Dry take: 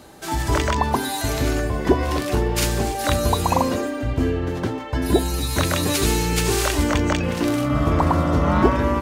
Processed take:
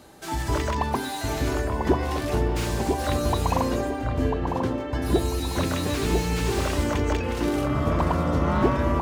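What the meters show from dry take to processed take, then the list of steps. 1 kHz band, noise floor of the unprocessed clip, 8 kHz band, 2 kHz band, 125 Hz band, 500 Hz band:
−4.0 dB, −29 dBFS, −9.0 dB, −5.5 dB, −3.5 dB, −3.5 dB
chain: delay with a low-pass on its return 995 ms, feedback 35%, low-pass 1,100 Hz, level −4 dB
slew-rate limiting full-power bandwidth 180 Hz
level −4.5 dB

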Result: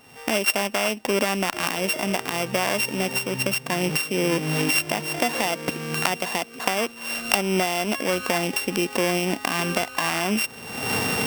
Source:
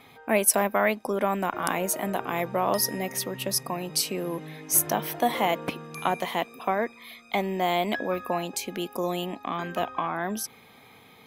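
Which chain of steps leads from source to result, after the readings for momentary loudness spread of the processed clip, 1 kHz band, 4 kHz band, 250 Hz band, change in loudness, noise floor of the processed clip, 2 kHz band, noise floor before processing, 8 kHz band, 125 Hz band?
4 LU, 0.0 dB, +8.0 dB, +5.0 dB, +3.5 dB, −42 dBFS, +8.0 dB, −53 dBFS, +0.5 dB, +6.0 dB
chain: samples sorted by size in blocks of 16 samples
camcorder AGC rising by 46 dB per second
level −1 dB

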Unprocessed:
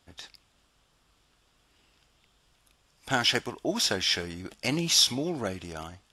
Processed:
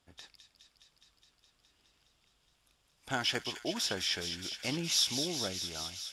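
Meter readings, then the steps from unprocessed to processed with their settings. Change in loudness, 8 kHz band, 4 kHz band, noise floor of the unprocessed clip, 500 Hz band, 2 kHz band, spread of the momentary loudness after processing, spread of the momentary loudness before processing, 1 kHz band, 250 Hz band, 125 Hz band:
−6.5 dB, −5.5 dB, −5.5 dB, −68 dBFS, −7.5 dB, −6.5 dB, 9 LU, 18 LU, −7.0 dB, −7.0 dB, −7.0 dB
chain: harmonic generator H 5 −42 dB, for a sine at −10.5 dBFS
delay with a high-pass on its return 208 ms, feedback 82%, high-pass 2,500 Hz, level −7 dB
level −7.5 dB

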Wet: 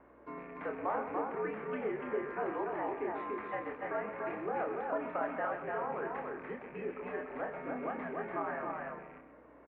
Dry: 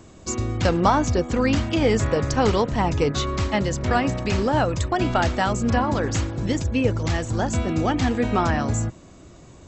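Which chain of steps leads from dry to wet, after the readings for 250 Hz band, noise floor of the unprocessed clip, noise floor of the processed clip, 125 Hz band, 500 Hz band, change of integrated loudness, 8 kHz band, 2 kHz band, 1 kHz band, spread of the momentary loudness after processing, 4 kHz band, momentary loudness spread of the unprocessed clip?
−19.5 dB, −47 dBFS, −57 dBFS, −31.5 dB, −12.5 dB, −15.5 dB, below −40 dB, −13.0 dB, −13.0 dB, 7 LU, below −30 dB, 5 LU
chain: loose part that buzzes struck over −23 dBFS, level −25 dBFS
downward compressor 3 to 1, threshold −27 dBFS, peak gain reduction 11 dB
double-tracking delay 28 ms −5.5 dB
frequency shifter +14 Hz
single-tap delay 290 ms −3 dB
single-sideband voice off tune −85 Hz 410–2,100 Hz
single-tap delay 129 ms −10.5 dB
mains hum 60 Hz, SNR 34 dB
level −7 dB

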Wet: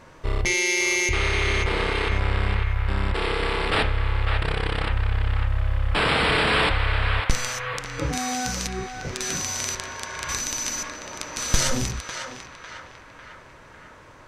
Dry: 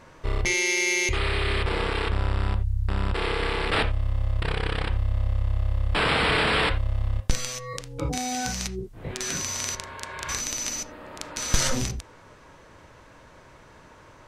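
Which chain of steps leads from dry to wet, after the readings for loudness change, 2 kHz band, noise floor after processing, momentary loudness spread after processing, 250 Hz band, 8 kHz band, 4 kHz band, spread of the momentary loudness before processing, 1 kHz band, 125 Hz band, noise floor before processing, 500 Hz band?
+2.0 dB, +3.0 dB, −47 dBFS, 13 LU, +1.5 dB, +2.0 dB, +2.0 dB, 11 LU, +3.0 dB, +1.5 dB, −51 dBFS, +2.0 dB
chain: feedback echo with a band-pass in the loop 550 ms, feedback 60%, band-pass 1,500 Hz, level −4.5 dB
level +1.5 dB

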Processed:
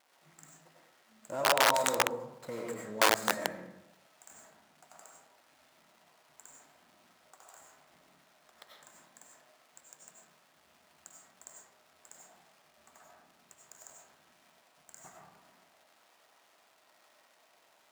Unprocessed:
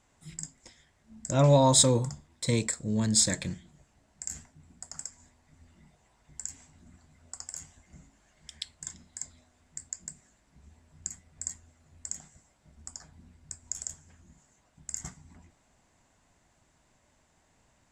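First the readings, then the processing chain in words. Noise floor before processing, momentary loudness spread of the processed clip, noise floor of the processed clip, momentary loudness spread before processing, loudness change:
−68 dBFS, 17 LU, −67 dBFS, 23 LU, 0.0 dB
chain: running median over 15 samples
brickwall limiter −21.5 dBFS, peak gain reduction 9.5 dB
parametric band 3,800 Hz −7 dB 1.7 octaves
surface crackle 490 per second −51 dBFS
spectral tilt −2 dB per octave
comb and all-pass reverb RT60 0.9 s, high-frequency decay 0.55×, pre-delay 55 ms, DRR −2 dB
wrap-around overflow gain 14.5 dB
high-pass filter 700 Hz 12 dB per octave
level +1 dB

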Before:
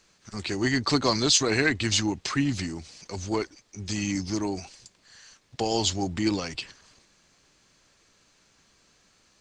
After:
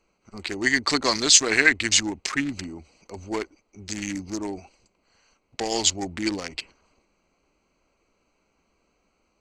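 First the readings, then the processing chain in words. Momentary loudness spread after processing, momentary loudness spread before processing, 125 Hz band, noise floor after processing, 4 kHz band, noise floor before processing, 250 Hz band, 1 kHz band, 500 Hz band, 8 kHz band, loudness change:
20 LU, 18 LU, −8.0 dB, −71 dBFS, +3.5 dB, −64 dBFS, −2.0 dB, +0.5 dB, −0.5 dB, +7.0 dB, +4.0 dB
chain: adaptive Wiener filter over 25 samples
octave-band graphic EQ 125/2,000/8,000 Hz −11/+10/+10 dB

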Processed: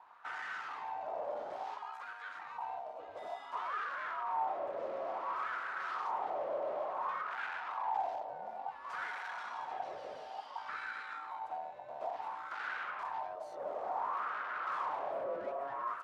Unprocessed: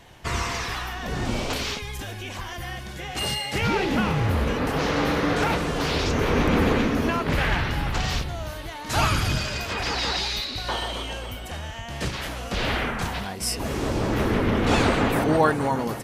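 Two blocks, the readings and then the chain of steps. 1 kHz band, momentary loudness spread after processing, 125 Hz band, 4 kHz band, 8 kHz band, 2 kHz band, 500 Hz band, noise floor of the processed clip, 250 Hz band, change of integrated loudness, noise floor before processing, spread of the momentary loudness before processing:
−8.0 dB, 8 LU, below −40 dB, −28.0 dB, below −30 dB, −14.0 dB, −14.5 dB, −49 dBFS, −34.0 dB, −14.5 dB, −36 dBFS, 13 LU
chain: tube saturation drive 28 dB, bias 0.45
ring modulation 830 Hz
LFO wah 0.57 Hz 570–1,500 Hz, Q 5.3
level +4 dB

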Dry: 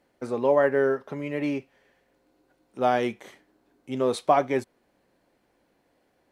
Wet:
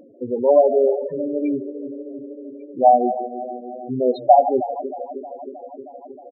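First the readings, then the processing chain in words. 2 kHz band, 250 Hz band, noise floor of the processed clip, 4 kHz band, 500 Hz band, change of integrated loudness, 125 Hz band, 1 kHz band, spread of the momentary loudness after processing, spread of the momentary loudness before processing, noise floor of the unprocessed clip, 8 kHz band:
below −20 dB, +5.0 dB, −43 dBFS, can't be measured, +7.0 dB, +6.5 dB, −2.0 dB, +10.0 dB, 21 LU, 11 LU, −70 dBFS, below −30 dB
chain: feedback delay that plays each chunk backwards 157 ms, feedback 78%, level −12 dB
parametric band 1,300 Hz −10.5 dB 0.7 octaves
double-tracking delay 24 ms −11 dB
on a send: echo with shifted repeats 149 ms, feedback 52%, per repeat +94 Hz, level −18 dB
on the sum: dynamic equaliser 740 Hz, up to +8 dB, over −38 dBFS, Q 2.3
in parallel at −1 dB: upward compression, threshold −23 dBFS
on the sum: spectral peaks only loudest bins 8
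level −1 dB

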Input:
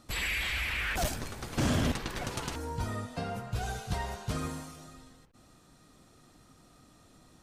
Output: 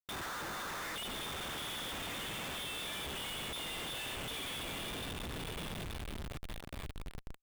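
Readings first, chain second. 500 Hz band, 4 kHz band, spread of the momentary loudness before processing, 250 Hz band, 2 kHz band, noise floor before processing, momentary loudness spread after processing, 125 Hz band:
−6.0 dB, +1.0 dB, 9 LU, −9.5 dB, −6.0 dB, −60 dBFS, 8 LU, −11.0 dB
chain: variable-slope delta modulation 64 kbit/s
low-shelf EQ 460 Hz −5.5 dB
brickwall limiter −32 dBFS, peak gain reduction 10.5 dB
downward compressor 2.5 to 1, threshold −48 dBFS, peak gain reduction 8 dB
high-frequency loss of the air 160 metres
on a send: feedback delay with all-pass diffusion 1,142 ms, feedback 51%, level −8 dB
on the sum: voice inversion scrambler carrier 3,600 Hz
comparator with hysteresis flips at −51.5 dBFS
level +9 dB

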